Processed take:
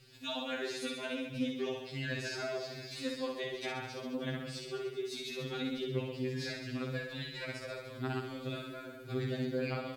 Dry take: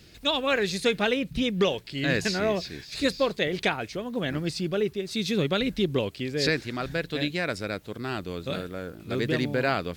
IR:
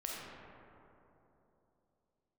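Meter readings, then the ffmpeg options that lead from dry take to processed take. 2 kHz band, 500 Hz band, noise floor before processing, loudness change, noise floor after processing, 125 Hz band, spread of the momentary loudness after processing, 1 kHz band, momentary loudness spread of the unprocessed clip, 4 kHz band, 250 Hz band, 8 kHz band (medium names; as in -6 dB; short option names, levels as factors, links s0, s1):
-11.5 dB, -11.0 dB, -49 dBFS, -11.0 dB, -48 dBFS, -8.0 dB, 5 LU, -12.0 dB, 8 LU, -11.5 dB, -10.0 dB, -10.0 dB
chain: -af "acompressor=threshold=0.0282:ratio=2.5,aecho=1:1:60|129|208.4|299.6|404.5:0.631|0.398|0.251|0.158|0.1,afftfilt=real='re*2.45*eq(mod(b,6),0)':imag='im*2.45*eq(mod(b,6),0)':win_size=2048:overlap=0.75,volume=0.531"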